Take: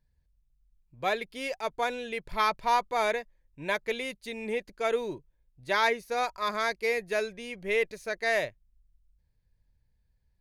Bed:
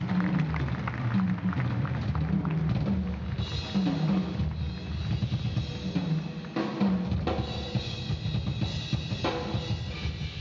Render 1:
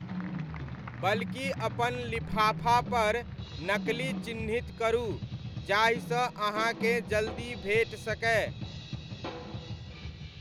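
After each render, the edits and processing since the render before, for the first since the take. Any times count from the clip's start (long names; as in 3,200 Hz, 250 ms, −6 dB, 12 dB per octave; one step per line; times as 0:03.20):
mix in bed −9.5 dB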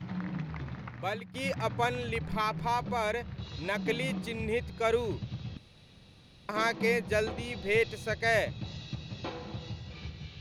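0:00.77–0:01.34: fade out, to −18 dB
0:02.19–0:03.79: downward compressor 2 to 1, threshold −29 dBFS
0:05.57–0:06.49: fill with room tone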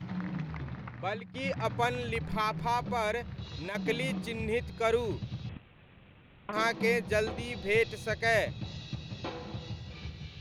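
0:00.57–0:01.65: high-frequency loss of the air 87 metres
0:03.31–0:03.75: downward compressor 4 to 1, threshold −34 dBFS
0:05.49–0:06.53: variable-slope delta modulation 16 kbit/s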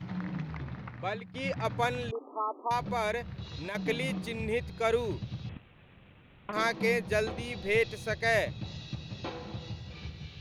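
0:02.11–0:02.71: linear-phase brick-wall band-pass 240–1,300 Hz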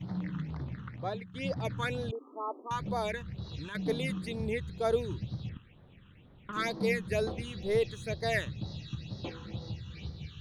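all-pass phaser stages 8, 2.1 Hz, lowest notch 630–2,600 Hz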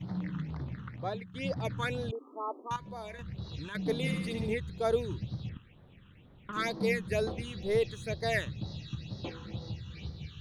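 0:02.76–0:03.19: tuned comb filter 75 Hz, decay 1.6 s, harmonics odd, mix 70%
0:03.96–0:04.55: flutter between parallel walls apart 12 metres, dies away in 0.86 s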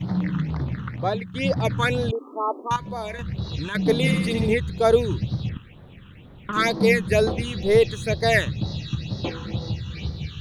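level +11.5 dB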